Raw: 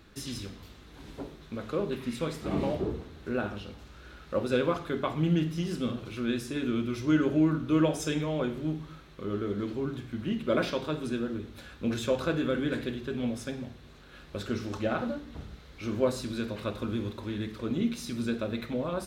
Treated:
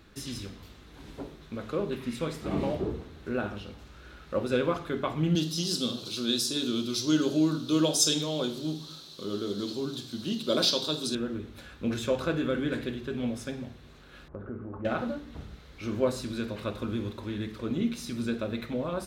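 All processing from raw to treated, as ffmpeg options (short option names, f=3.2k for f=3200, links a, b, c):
-filter_complex "[0:a]asettb=1/sr,asplit=3[a][b][c];[a]atrim=end=5.354[d];[b]atrim=start=5.35:end=11.15,asetpts=PTS-STARTPTS,afade=t=in:d=0.004:c=qsin,afade=t=out:st=5.796:d=0.004:c=qsin,highpass=150,highshelf=f=3k:t=q:w=3:g=12[e];[c]atrim=start=11.146[f];[d][e]acrossfade=d=0.004:c1=hsin:c2=qsin[g];[g][f]acrossfade=d=0.004:c1=qsin:c2=hsin,asettb=1/sr,asplit=3[h][i][j];[h]atrim=end=14.284[k];[i]atrim=start=14.28:end=14.85,asetpts=PTS-STARTPTS,afade=t=in:d=0.004:c=qsin,afade=t=out:st=0.566:d=0.004:c=qsin,lowpass=f=1.3k:w=0.5412,lowpass=f=1.3k:w=1.3066,acompressor=threshold=-36dB:ratio=2.5:attack=3.2:release=140:knee=1:detection=peak[l];[j]atrim=start=14.846[m];[k][l]acrossfade=d=0.004:c1=hsin:c2=qsin[n];[n][m]acrossfade=d=0.004:c1=qsin:c2=hsin"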